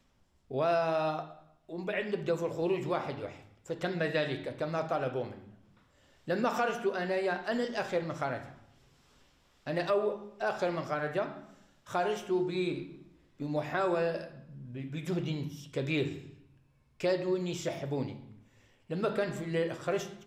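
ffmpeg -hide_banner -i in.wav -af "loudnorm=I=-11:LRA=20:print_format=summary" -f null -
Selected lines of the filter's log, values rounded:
Input Integrated:    -33.4 LUFS
Input True Peak:     -17.5 dBTP
Input LRA:             2.2 LU
Input Threshold:     -44.4 LUFS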